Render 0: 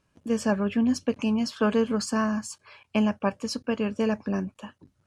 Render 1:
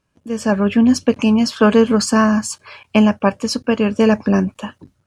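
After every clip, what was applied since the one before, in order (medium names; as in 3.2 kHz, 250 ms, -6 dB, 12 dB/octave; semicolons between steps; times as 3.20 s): level rider gain up to 14 dB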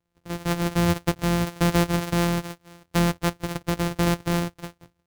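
sorted samples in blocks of 256 samples; trim -9 dB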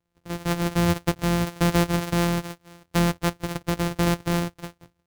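no audible change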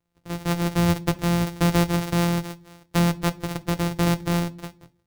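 reverberation RT60 0.40 s, pre-delay 3 ms, DRR 13.5 dB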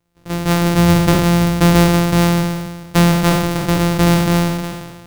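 spectral sustain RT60 1.45 s; trim +7.5 dB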